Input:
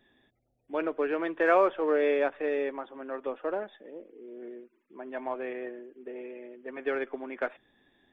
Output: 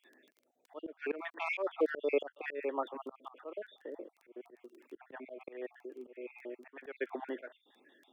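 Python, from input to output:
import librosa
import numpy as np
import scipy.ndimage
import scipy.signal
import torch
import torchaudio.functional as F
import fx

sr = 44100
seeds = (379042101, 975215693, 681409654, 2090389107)

y = fx.spec_dropout(x, sr, seeds[0], share_pct=49)
y = fx.dmg_crackle(y, sr, seeds[1], per_s=11.0, level_db=-52.0)
y = scipy.signal.sosfilt(scipy.signal.butter(4, 280.0, 'highpass', fs=sr, output='sos'), y)
y = fx.auto_swell(y, sr, attack_ms=305.0)
y = fx.band_squash(y, sr, depth_pct=70, at=(2.94, 5.38))
y = F.gain(torch.from_numpy(y), 4.0).numpy()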